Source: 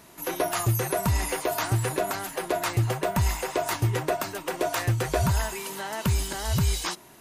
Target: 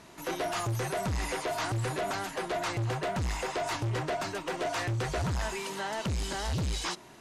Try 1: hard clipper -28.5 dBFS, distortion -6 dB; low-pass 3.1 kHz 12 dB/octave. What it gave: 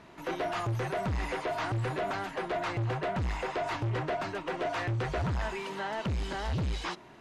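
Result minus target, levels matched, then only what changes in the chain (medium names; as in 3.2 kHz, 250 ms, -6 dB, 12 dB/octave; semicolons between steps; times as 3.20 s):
8 kHz band -11.5 dB
change: low-pass 6.8 kHz 12 dB/octave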